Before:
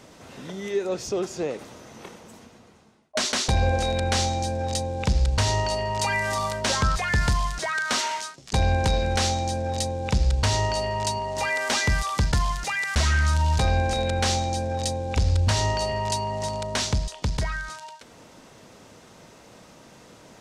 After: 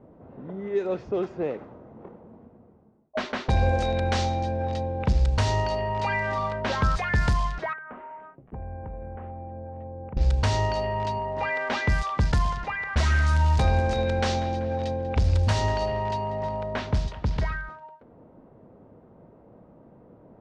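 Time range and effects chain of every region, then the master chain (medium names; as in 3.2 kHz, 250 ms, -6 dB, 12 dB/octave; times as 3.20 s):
7.73–10.17 s: steep low-pass 2.8 kHz + compression, threshold -34 dBFS
12.25–17.55 s: two-band feedback delay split 430 Hz, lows 118 ms, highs 192 ms, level -14.5 dB + tape noise reduction on one side only encoder only
whole clip: treble shelf 3.4 kHz -8 dB; level-controlled noise filter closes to 600 Hz, open at -17.5 dBFS; treble shelf 7.9 kHz -6 dB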